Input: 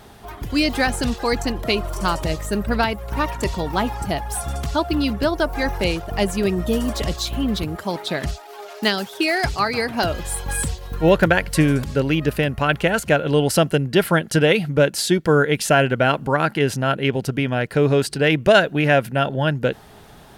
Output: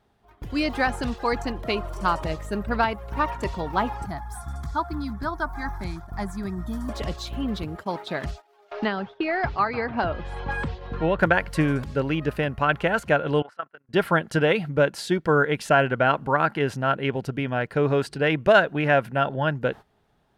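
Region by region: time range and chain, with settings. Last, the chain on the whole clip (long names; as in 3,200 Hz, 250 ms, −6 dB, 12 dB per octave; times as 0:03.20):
0:04.06–0:06.89: parametric band 3,300 Hz +8 dB 0.22 octaves + phaser with its sweep stopped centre 1,200 Hz, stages 4
0:08.71–0:11.19: high-frequency loss of the air 240 metres + multiband upward and downward compressor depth 70%
0:13.42–0:13.89: resonant band-pass 1,300 Hz, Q 2.8 + amplitude modulation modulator 28 Hz, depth 50%
whole clip: high-shelf EQ 5,300 Hz −11 dB; noise gate −32 dBFS, range −15 dB; dynamic equaliser 1,100 Hz, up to +7 dB, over −32 dBFS, Q 0.94; level −6 dB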